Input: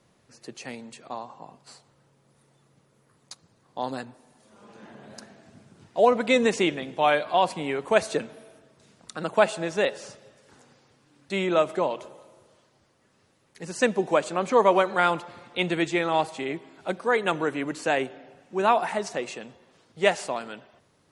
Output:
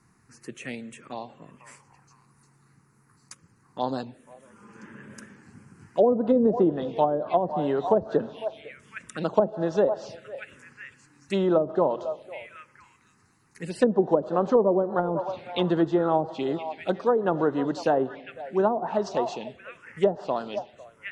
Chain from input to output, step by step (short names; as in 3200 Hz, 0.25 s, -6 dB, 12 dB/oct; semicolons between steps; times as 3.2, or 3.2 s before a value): delay with a stepping band-pass 0.501 s, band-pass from 740 Hz, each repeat 1.4 oct, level -11 dB; treble ducked by the level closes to 430 Hz, closed at -17 dBFS; envelope phaser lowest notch 560 Hz, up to 2300 Hz, full sweep at -27 dBFS; gain +4 dB